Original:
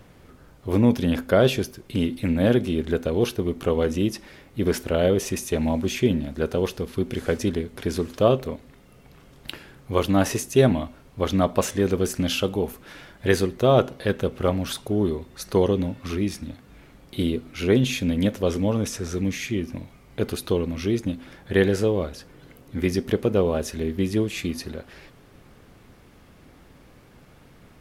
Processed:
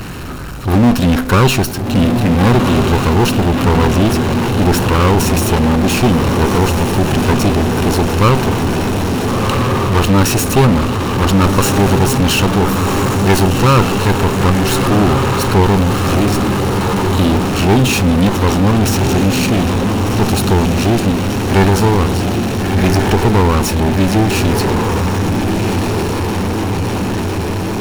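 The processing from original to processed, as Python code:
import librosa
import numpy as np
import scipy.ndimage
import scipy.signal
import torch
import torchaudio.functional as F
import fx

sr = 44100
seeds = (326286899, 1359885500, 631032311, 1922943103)

y = fx.lower_of_two(x, sr, delay_ms=0.72)
y = fx.echo_diffused(y, sr, ms=1399, feedback_pct=64, wet_db=-7)
y = fx.power_curve(y, sr, exponent=0.5)
y = y * 10.0 ** (2.5 / 20.0)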